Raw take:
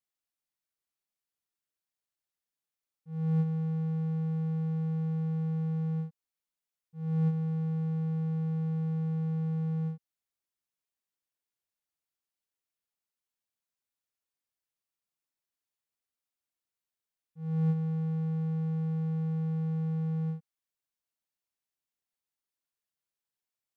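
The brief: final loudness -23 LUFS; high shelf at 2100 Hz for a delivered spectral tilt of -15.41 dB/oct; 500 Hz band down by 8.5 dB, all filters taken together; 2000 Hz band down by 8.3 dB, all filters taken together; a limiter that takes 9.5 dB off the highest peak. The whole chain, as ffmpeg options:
-af "equalizer=f=500:t=o:g=-8,equalizer=f=2k:t=o:g=-8.5,highshelf=f=2.1k:g=-5.5,volume=13dB,alimiter=limit=-18dB:level=0:latency=1"

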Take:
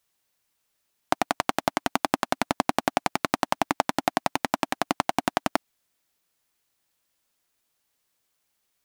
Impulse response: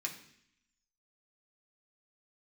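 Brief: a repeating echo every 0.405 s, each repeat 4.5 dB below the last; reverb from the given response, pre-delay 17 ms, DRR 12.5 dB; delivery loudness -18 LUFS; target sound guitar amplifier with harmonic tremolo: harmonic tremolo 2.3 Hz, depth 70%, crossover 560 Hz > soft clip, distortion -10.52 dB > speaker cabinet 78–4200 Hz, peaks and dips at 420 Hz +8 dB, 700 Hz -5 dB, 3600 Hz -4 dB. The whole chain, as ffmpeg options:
-filter_complex "[0:a]aecho=1:1:405|810|1215|1620|2025|2430|2835|3240|3645:0.596|0.357|0.214|0.129|0.0772|0.0463|0.0278|0.0167|0.01,asplit=2[a][b];[1:a]atrim=start_sample=2205,adelay=17[c];[b][c]afir=irnorm=-1:irlink=0,volume=-13.5dB[d];[a][d]amix=inputs=2:normalize=0,acrossover=split=560[e][f];[e]aeval=exprs='val(0)*(1-0.7/2+0.7/2*cos(2*PI*2.3*n/s))':c=same[g];[f]aeval=exprs='val(0)*(1-0.7/2-0.7/2*cos(2*PI*2.3*n/s))':c=same[h];[g][h]amix=inputs=2:normalize=0,asoftclip=threshold=-17dB,highpass=78,equalizer=f=420:t=q:w=4:g=8,equalizer=f=700:t=q:w=4:g=-5,equalizer=f=3.6k:t=q:w=4:g=-4,lowpass=f=4.2k:w=0.5412,lowpass=f=4.2k:w=1.3066,volume=15.5dB"

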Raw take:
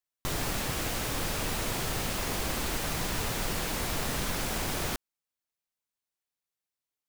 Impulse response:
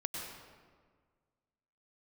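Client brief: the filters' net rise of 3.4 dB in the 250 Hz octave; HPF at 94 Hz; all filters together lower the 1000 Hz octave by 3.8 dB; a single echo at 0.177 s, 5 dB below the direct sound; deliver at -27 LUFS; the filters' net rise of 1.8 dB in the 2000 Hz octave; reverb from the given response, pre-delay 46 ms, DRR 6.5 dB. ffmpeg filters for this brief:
-filter_complex "[0:a]highpass=94,equalizer=f=250:t=o:g=5,equalizer=f=1k:t=o:g=-6.5,equalizer=f=2k:t=o:g=4,aecho=1:1:177:0.562,asplit=2[a][b];[1:a]atrim=start_sample=2205,adelay=46[c];[b][c]afir=irnorm=-1:irlink=0,volume=-8dB[d];[a][d]amix=inputs=2:normalize=0,volume=2dB"

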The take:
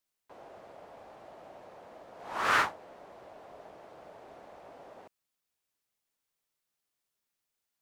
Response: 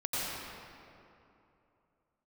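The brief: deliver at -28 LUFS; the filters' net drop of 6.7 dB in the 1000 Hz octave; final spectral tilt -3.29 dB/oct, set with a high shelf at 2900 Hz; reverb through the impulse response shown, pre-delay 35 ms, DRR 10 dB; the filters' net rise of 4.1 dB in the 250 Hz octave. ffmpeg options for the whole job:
-filter_complex "[0:a]equalizer=f=250:t=o:g=6,equalizer=f=1k:t=o:g=-8.5,highshelf=f=2.9k:g=-5,asplit=2[a][b];[1:a]atrim=start_sample=2205,adelay=35[c];[b][c]afir=irnorm=-1:irlink=0,volume=-17.5dB[d];[a][d]amix=inputs=2:normalize=0,volume=9dB"

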